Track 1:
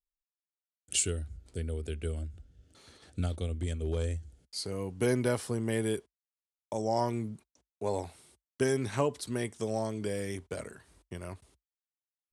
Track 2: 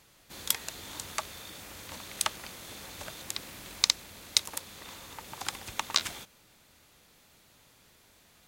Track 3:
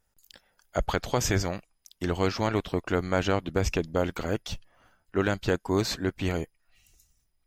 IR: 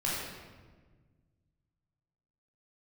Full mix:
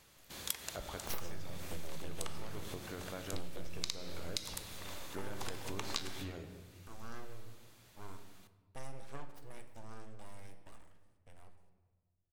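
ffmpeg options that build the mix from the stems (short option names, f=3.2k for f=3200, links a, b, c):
-filter_complex "[0:a]aeval=exprs='abs(val(0))':c=same,adelay=150,volume=-6.5dB,afade=t=out:st=3.48:d=0.55:silence=0.237137,asplit=2[a][b];[b]volume=-12dB[c];[1:a]volume=-3.5dB,asplit=2[d][e];[e]volume=-18.5dB[f];[2:a]acompressor=threshold=-35dB:ratio=4,volume=-10.5dB,asplit=3[g][h][i];[h]volume=-10.5dB[j];[i]apad=whole_len=373621[k];[d][k]sidechaincompress=threshold=-51dB:ratio=8:attack=29:release=219[l];[3:a]atrim=start_sample=2205[m];[c][f][j]amix=inputs=3:normalize=0[n];[n][m]afir=irnorm=-1:irlink=0[o];[a][l][g][o]amix=inputs=4:normalize=0,acompressor=threshold=-33dB:ratio=6"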